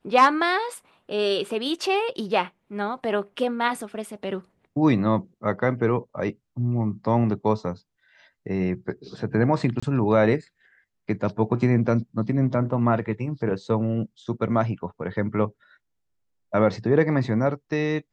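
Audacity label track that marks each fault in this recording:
9.800000	9.820000	gap 25 ms

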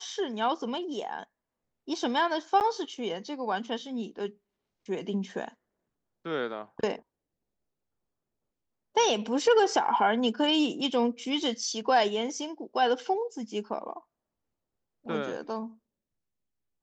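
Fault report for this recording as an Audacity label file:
2.600000	2.610000	gap 9.1 ms

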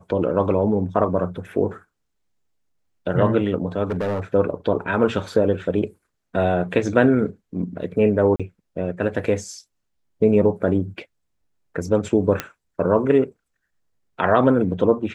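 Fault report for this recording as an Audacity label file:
3.900000	4.200000	clipped -20 dBFS
8.360000	8.400000	gap 36 ms
12.400000	12.400000	pop -8 dBFS

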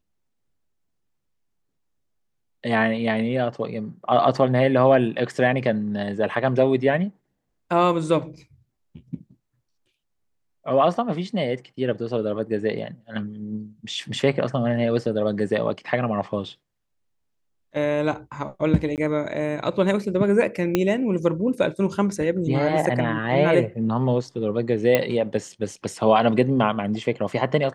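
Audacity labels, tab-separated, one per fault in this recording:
18.960000	18.980000	gap 18 ms
20.750000	20.750000	pop -6 dBFS
24.950000	24.950000	pop -5 dBFS

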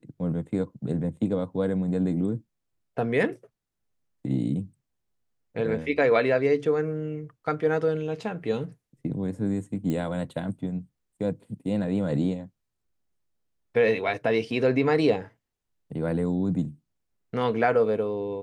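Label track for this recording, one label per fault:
9.900000	9.900000	pop -18 dBFS

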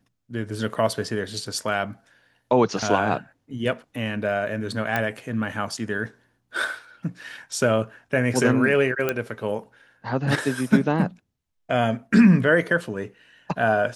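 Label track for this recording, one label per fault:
0.740000	0.740000	gap 3 ms
4.960000	4.960000	pop -10 dBFS
9.090000	9.090000	pop -9 dBFS

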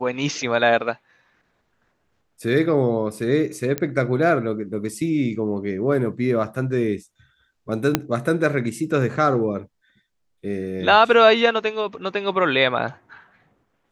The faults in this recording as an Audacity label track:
3.780000	3.780000	pop -9 dBFS
7.950000	7.950000	pop -2 dBFS

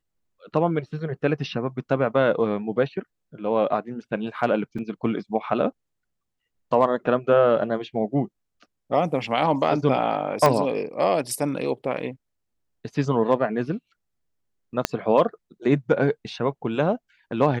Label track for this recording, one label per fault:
4.780000	4.790000	gap 5.5 ms
10.460000	10.460000	pop -6 dBFS
14.850000	14.850000	pop -5 dBFS

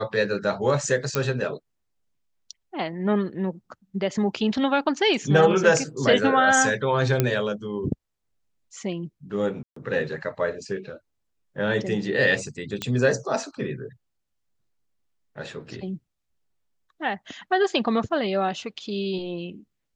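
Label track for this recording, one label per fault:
1.150000	1.150000	pop -8 dBFS
7.200000	7.200000	pop -6 dBFS
9.630000	9.760000	gap 0.134 s
12.820000	12.820000	pop -12 dBFS

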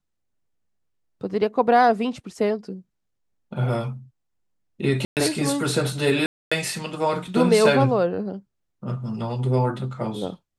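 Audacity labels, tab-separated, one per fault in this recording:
5.050000	5.170000	gap 0.118 s
6.260000	6.510000	gap 0.255 s

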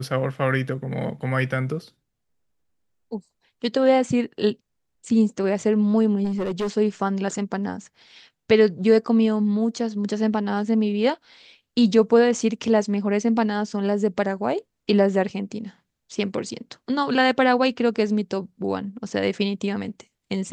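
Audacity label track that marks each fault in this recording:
6.240000	6.680000	clipped -21.5 dBFS

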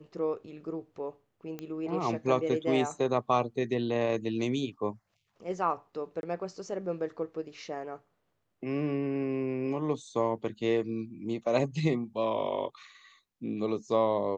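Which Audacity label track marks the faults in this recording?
1.590000	1.590000	pop -24 dBFS
6.210000	6.230000	gap 21 ms

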